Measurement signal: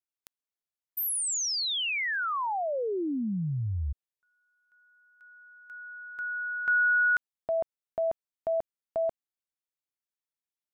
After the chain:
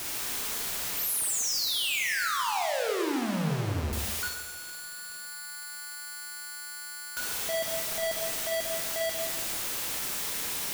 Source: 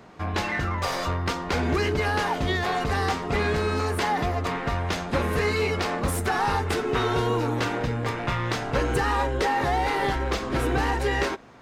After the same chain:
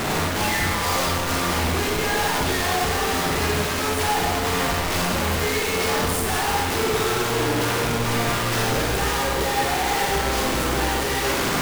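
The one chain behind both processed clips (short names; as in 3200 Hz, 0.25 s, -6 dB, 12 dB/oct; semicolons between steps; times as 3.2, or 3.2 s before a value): infinite clipping; Schroeder reverb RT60 1.1 s, DRR -0.5 dB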